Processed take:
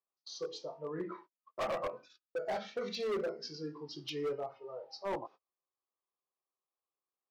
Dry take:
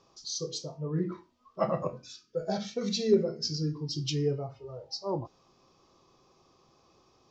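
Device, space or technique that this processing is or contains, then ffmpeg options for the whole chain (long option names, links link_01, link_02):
walkie-talkie: -af "highpass=520,lowpass=2300,asoftclip=type=hard:threshold=-34dB,agate=range=-35dB:threshold=-56dB:ratio=16:detection=peak,volume=2.5dB"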